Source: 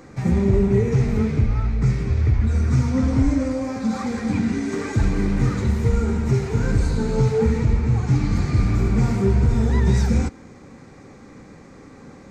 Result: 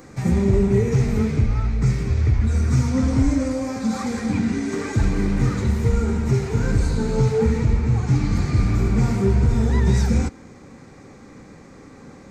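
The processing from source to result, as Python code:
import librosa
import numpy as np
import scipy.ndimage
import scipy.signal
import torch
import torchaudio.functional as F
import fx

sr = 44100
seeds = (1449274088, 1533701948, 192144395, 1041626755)

y = fx.high_shelf(x, sr, hz=6600.0, db=fx.steps((0.0, 10.0), (4.26, 3.5)))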